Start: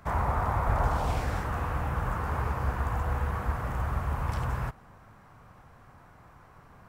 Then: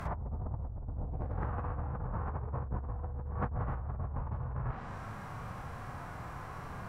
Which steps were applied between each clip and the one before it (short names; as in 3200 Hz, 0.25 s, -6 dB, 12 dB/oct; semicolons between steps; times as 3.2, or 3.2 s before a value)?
treble ducked by the level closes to 300 Hz, closed at -23 dBFS; harmonic-percussive split percussive -10 dB; negative-ratio compressor -41 dBFS, ratio -1; gain +4.5 dB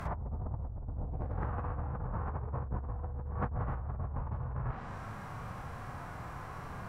nothing audible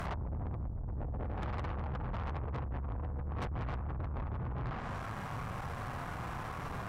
tube stage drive 42 dB, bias 0.65; gain +7.5 dB